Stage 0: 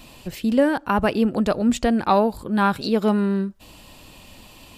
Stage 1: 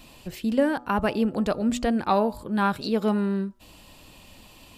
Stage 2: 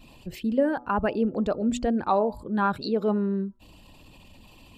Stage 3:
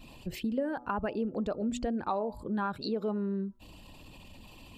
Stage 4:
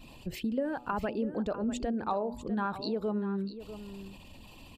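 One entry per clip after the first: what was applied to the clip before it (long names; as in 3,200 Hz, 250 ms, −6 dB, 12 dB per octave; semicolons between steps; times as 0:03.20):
hum removal 121.9 Hz, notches 11; level −4 dB
spectral envelope exaggerated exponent 1.5; level −1 dB
downward compressor 3 to 1, threshold −31 dBFS, peak gain reduction 10.5 dB
single-tap delay 647 ms −12.5 dB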